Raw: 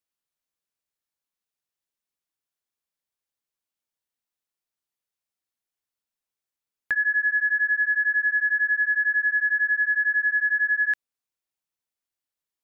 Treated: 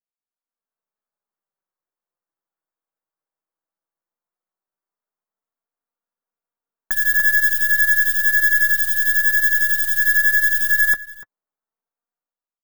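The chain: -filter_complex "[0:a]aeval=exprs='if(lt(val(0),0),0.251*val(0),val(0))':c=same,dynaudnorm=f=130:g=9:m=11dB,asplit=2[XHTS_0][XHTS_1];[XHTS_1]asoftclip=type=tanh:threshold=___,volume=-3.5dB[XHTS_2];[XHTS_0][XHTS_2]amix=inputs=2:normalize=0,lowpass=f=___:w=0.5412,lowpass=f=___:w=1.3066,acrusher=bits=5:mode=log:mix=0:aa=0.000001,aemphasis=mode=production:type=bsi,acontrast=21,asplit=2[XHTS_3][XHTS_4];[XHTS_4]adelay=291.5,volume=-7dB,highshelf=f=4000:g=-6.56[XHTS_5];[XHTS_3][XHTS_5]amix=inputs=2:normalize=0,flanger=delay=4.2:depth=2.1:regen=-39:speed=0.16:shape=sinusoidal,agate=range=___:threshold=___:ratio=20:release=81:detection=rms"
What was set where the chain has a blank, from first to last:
-16.5dB, 1400, 1400, -8dB, -22dB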